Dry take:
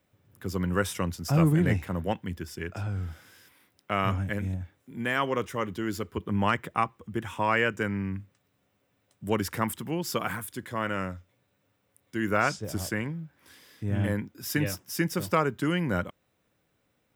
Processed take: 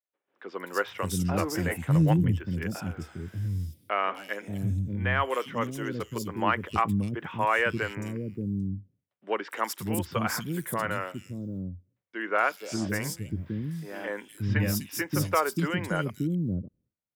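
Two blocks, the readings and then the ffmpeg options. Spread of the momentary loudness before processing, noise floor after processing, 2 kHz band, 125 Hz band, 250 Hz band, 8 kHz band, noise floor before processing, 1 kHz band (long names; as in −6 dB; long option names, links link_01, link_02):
12 LU, −84 dBFS, +1.0 dB, +1.5 dB, 0.0 dB, +1.5 dB, −73 dBFS, +1.0 dB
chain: -filter_complex "[0:a]acontrast=56,agate=range=-33dB:threshold=-49dB:ratio=3:detection=peak,acrossover=split=350|3500[link_01][link_02][link_03];[link_03]adelay=250[link_04];[link_01]adelay=580[link_05];[link_05][link_02][link_04]amix=inputs=3:normalize=0,volume=-4.5dB"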